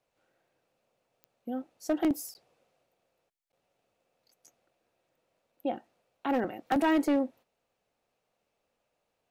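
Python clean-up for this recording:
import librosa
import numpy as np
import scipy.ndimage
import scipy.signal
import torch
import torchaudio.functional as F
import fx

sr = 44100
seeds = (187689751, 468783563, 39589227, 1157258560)

y = fx.fix_declip(x, sr, threshold_db=-20.5)
y = fx.fix_declick_ar(y, sr, threshold=10.0)
y = fx.fix_interpolate(y, sr, at_s=(2.34, 3.52), length_ms=9.9)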